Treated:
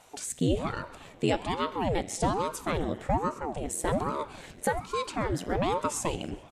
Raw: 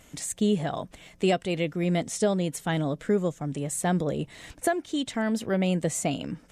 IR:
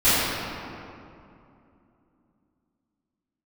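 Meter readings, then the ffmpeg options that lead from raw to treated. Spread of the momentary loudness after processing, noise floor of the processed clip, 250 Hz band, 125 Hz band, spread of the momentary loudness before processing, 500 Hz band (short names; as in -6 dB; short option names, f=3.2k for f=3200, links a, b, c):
7 LU, -51 dBFS, -5.5 dB, -4.5 dB, 7 LU, -3.0 dB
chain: -filter_complex "[0:a]asplit=4[a][b][c][d];[b]adelay=134,afreqshift=85,volume=-22dB[e];[c]adelay=268,afreqshift=170,volume=-28.7dB[f];[d]adelay=402,afreqshift=255,volume=-35.5dB[g];[a][e][f][g]amix=inputs=4:normalize=0,asplit=2[h][i];[1:a]atrim=start_sample=2205,asetrate=52920,aresample=44100,lowshelf=f=450:g=-9.5[j];[i][j]afir=irnorm=-1:irlink=0,volume=-31dB[k];[h][k]amix=inputs=2:normalize=0,aeval=exprs='val(0)*sin(2*PI*410*n/s+410*0.9/1.2*sin(2*PI*1.2*n/s))':c=same"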